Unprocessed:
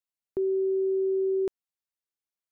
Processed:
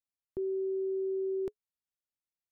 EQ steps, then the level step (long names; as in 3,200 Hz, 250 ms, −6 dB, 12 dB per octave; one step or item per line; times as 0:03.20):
low-shelf EQ 220 Hz +9.5 dB
notch filter 420 Hz, Q 13
−8.5 dB